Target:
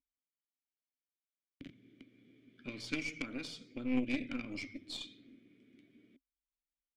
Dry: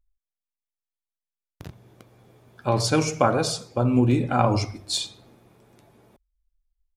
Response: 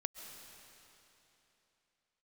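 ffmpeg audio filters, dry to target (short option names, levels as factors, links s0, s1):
-filter_complex "[0:a]acrossover=split=960|5800[s0][s1][s2];[s0]acompressor=threshold=0.0178:ratio=4[s3];[s1]acompressor=threshold=0.0282:ratio=4[s4];[s2]acompressor=threshold=0.0158:ratio=4[s5];[s3][s4][s5]amix=inputs=3:normalize=0,asplit=3[s6][s7][s8];[s6]bandpass=f=270:t=q:w=8,volume=1[s9];[s7]bandpass=f=2290:t=q:w=8,volume=0.501[s10];[s8]bandpass=f=3010:t=q:w=8,volume=0.355[s11];[s9][s10][s11]amix=inputs=3:normalize=0,aeval=exprs='0.0299*(cos(1*acos(clip(val(0)/0.0299,-1,1)))-cos(1*PI/2))+0.00596*(cos(3*acos(clip(val(0)/0.0299,-1,1)))-cos(3*PI/2))+0.00335*(cos(4*acos(clip(val(0)/0.0299,-1,1)))-cos(4*PI/2))+0.00106*(cos(5*acos(clip(val(0)/0.0299,-1,1)))-cos(5*PI/2))+0.000211*(cos(6*acos(clip(val(0)/0.0299,-1,1)))-cos(6*PI/2))':c=same,volume=2.99"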